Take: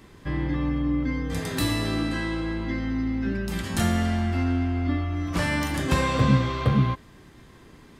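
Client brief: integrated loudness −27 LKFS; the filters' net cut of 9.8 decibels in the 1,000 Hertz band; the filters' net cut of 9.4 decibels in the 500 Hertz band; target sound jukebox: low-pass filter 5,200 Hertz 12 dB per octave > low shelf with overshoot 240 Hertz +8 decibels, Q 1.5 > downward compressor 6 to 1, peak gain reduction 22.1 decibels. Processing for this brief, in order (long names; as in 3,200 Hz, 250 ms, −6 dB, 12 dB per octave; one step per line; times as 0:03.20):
low-pass filter 5,200 Hz 12 dB per octave
low shelf with overshoot 240 Hz +8 dB, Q 1.5
parametric band 500 Hz −8.5 dB
parametric band 1,000 Hz −9 dB
downward compressor 6 to 1, threshold −31 dBFS
level +7.5 dB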